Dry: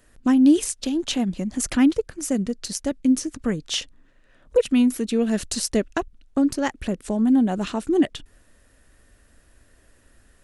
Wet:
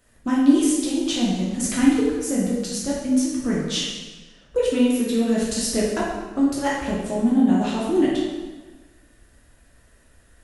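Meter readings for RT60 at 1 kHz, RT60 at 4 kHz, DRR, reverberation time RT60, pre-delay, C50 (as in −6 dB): 1.3 s, 1.1 s, −6.0 dB, 1.3 s, 6 ms, 0.0 dB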